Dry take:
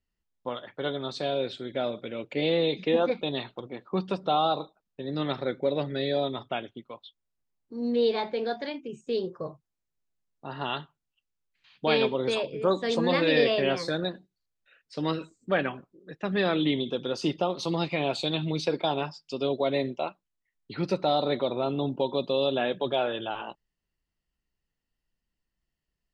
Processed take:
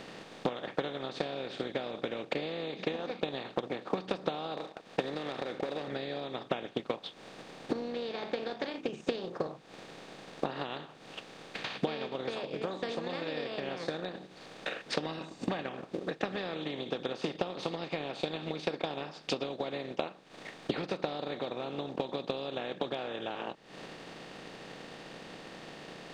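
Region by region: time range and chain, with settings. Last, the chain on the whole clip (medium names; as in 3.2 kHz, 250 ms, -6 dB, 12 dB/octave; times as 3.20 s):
4.57–5.88 s: tone controls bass -10 dB, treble -3 dB + compression 3:1, threshold -33 dBFS + waveshaping leveller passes 1
15.06–15.62 s: band-stop 1.8 kHz, Q 6 + comb 1.1 ms, depth 85%
whole clip: spectral levelling over time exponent 0.4; compression 4:1, threshold -35 dBFS; transient shaper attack +9 dB, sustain -4 dB; trim -3 dB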